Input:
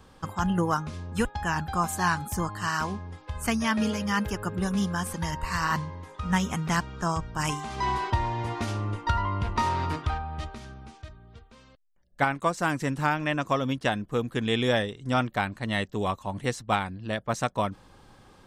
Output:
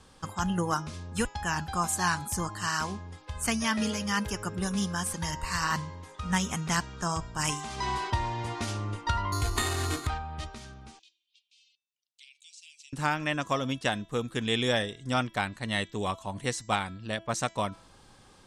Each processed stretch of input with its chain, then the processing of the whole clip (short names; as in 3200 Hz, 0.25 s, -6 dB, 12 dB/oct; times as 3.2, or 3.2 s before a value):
9.32–10.07 comb 2.7 ms, depth 98% + careless resampling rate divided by 8×, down none, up hold
10.99–12.93 steep high-pass 2500 Hz 72 dB/oct + air absorption 81 m + compressor 2:1, threshold -56 dBFS
whole clip: LPF 11000 Hz 24 dB/oct; high shelf 3500 Hz +10 dB; de-hum 330.4 Hz, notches 23; gain -3.5 dB